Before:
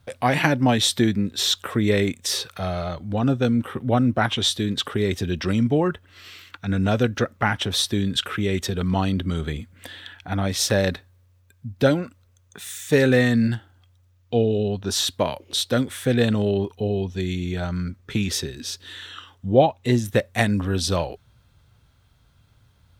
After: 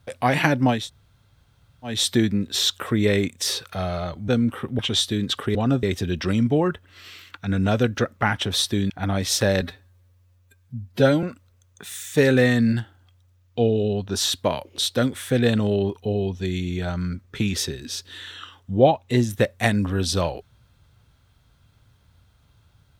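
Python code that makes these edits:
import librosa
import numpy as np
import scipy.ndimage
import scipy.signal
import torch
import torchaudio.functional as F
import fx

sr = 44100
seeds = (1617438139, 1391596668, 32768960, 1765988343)

y = fx.edit(x, sr, fx.insert_room_tone(at_s=0.78, length_s=1.16, crossfade_s=0.24),
    fx.move(start_s=3.12, length_s=0.28, to_s=5.03),
    fx.cut(start_s=3.91, length_s=0.36),
    fx.cut(start_s=8.1, length_s=2.09),
    fx.stretch_span(start_s=10.9, length_s=1.08, factor=1.5), tone=tone)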